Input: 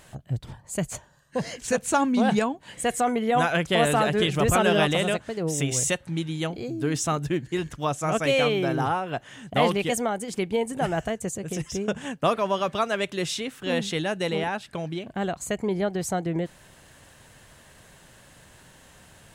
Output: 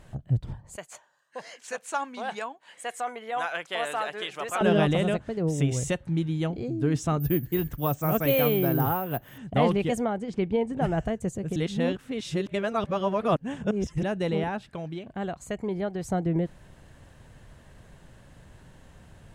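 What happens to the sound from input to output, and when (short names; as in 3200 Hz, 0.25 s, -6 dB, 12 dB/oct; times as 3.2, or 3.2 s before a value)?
0.76–4.61 HPF 880 Hz
7.2–9.38 careless resampling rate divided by 3×, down filtered, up zero stuff
10.04–10.81 LPF 5100 Hz
11.56–14.03 reverse
14.69–16.05 low shelf 470 Hz -7 dB
whole clip: tilt -2.5 dB/oct; gain -3.5 dB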